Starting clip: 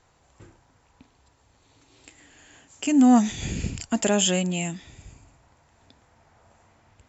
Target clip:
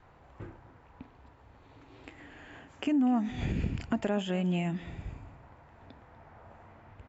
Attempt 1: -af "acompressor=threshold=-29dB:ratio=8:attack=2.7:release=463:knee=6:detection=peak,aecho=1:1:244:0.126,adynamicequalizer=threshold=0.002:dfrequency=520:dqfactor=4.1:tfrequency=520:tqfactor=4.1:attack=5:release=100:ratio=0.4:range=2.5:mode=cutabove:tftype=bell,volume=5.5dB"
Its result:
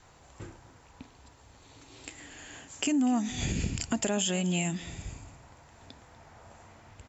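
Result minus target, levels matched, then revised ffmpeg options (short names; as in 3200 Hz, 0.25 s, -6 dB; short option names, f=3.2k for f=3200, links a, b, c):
2000 Hz band +2.5 dB
-af "acompressor=threshold=-29dB:ratio=8:attack=2.7:release=463:knee=6:detection=peak,lowpass=2k,aecho=1:1:244:0.126,adynamicequalizer=threshold=0.002:dfrequency=520:dqfactor=4.1:tfrequency=520:tqfactor=4.1:attack=5:release=100:ratio=0.4:range=2.5:mode=cutabove:tftype=bell,volume=5.5dB"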